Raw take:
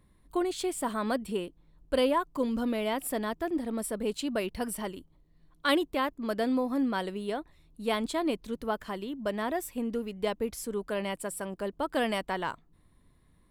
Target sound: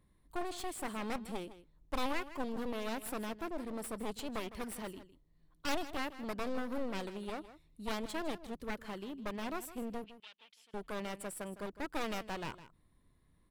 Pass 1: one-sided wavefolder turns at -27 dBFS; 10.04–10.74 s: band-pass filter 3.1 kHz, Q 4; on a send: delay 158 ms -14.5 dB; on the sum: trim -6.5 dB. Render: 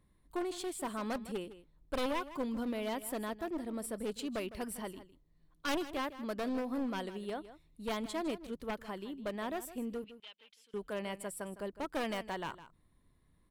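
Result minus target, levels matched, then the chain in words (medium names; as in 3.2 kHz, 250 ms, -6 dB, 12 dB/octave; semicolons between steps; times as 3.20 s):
one-sided wavefolder: distortion -11 dB
one-sided wavefolder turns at -35 dBFS; 10.04–10.74 s: band-pass filter 3.1 kHz, Q 4; on a send: delay 158 ms -14.5 dB; on the sum: trim -6.5 dB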